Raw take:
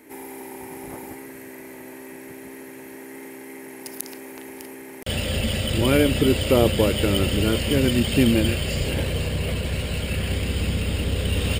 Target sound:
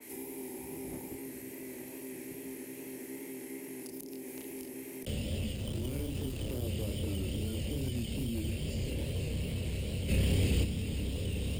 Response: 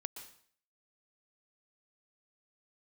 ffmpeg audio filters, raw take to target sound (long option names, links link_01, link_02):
-filter_complex "[0:a]acrossover=split=110|3600[link_01][link_02][link_03];[link_02]alimiter=limit=-17dB:level=0:latency=1[link_04];[link_01][link_04][link_03]amix=inputs=3:normalize=0,aexciter=amount=4.2:drive=7.2:freq=2200,asettb=1/sr,asplit=3[link_05][link_06][link_07];[link_05]atrim=end=5.534[link_08];[link_06]atrim=start=5.53:end=6.62,asetpts=PTS-STARTPTS,afade=type=in:duration=0.004:curve=qsin,afade=type=out:start_time=1.086:duration=0.004:curve=qsin,aeval=exprs='0.891*(cos(1*acos(clip(val(0)/0.891,-1,1)))-cos(1*PI/2))+0.112*(cos(7*acos(clip(val(0)/0.891,-1,1)))-cos(7*PI/2))':channel_layout=same[link_09];[link_07]atrim=start=6.616[link_10];[link_08][link_09]acrossfade=duration=0.004:curve1=hsin:curve2=qsin[link_11];[link_11][link_10]acrossfade=duration=0.004:curve1=qsin:curve2=hsin,flanger=delay=22.5:depth=7.6:speed=2.4,acrossover=split=120|500[link_12][link_13][link_14];[link_12]acompressor=threshold=-36dB:ratio=4[link_15];[link_13]acompressor=threshold=-37dB:ratio=4[link_16];[link_14]acompressor=threshold=-45dB:ratio=4[link_17];[link_15][link_16][link_17]amix=inputs=3:normalize=0,asoftclip=type=hard:threshold=-28.5dB,asplit=3[link_18][link_19][link_20];[link_18]afade=type=out:start_time=10.08:duration=0.02[link_21];[link_19]acontrast=77,afade=type=in:start_time=10.08:duration=0.02,afade=type=out:start_time=10.63:duration=0.02[link_22];[link_20]afade=type=in:start_time=10.63:duration=0.02[link_23];[link_21][link_22][link_23]amix=inputs=3:normalize=0,adynamicequalizer=threshold=0.00158:dfrequency=2300:dqfactor=0.7:tfrequency=2300:tqfactor=0.7:attack=5:release=100:ratio=0.375:range=3:mode=cutabove:tftype=highshelf"